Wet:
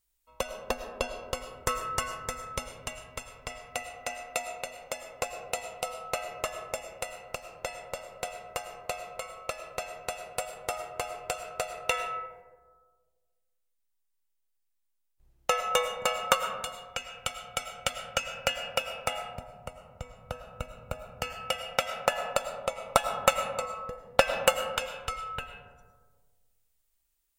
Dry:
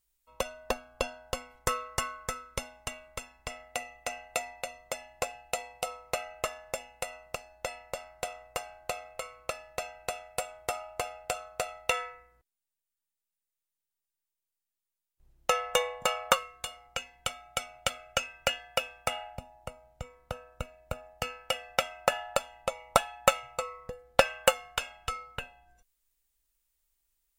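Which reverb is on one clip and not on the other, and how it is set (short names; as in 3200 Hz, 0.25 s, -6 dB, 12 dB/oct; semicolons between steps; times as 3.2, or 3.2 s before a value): digital reverb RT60 1.5 s, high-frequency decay 0.3×, pre-delay 65 ms, DRR 7.5 dB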